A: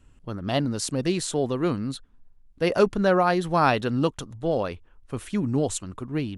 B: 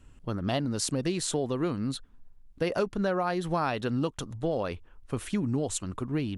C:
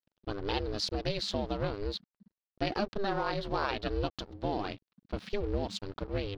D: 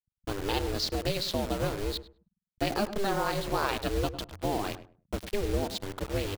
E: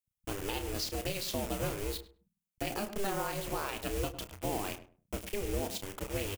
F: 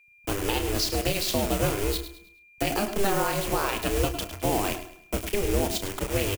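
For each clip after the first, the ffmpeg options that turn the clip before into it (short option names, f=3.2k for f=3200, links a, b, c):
-af "acompressor=threshold=-27dB:ratio=5,volume=1.5dB"
-af "aeval=exprs='sgn(val(0))*max(abs(val(0))-0.00531,0)':c=same,highshelf=f=6.3k:t=q:w=3:g=-13,aeval=exprs='val(0)*sin(2*PI*200*n/s)':c=same"
-filter_complex "[0:a]acrossover=split=140[a][b];[b]acrusher=bits=6:mix=0:aa=0.000001[c];[a][c]amix=inputs=2:normalize=0,asplit=2[d][e];[e]adelay=102,lowpass=f=1.2k:p=1,volume=-11dB,asplit=2[f][g];[g]adelay=102,lowpass=f=1.2k:p=1,volume=0.23,asplit=2[h][i];[i]adelay=102,lowpass=f=1.2k:p=1,volume=0.23[j];[d][f][h][j]amix=inputs=4:normalize=0,volume=2.5dB"
-filter_complex "[0:a]alimiter=limit=-19dB:level=0:latency=1:release=222,aexciter=amount=1.2:drive=6.3:freq=2.2k,asplit=2[a][b];[b]adelay=32,volume=-10dB[c];[a][c]amix=inputs=2:normalize=0,volume=-5dB"
-filter_complex "[0:a]aeval=exprs='val(0)+0.000562*sin(2*PI*2400*n/s)':c=same,acrossover=split=110|1500|5500[a][b][c][d];[a]acrusher=bits=3:mode=log:mix=0:aa=0.000001[e];[e][b][c][d]amix=inputs=4:normalize=0,aecho=1:1:105|210|315|420:0.237|0.0854|0.0307|0.0111,volume=9dB"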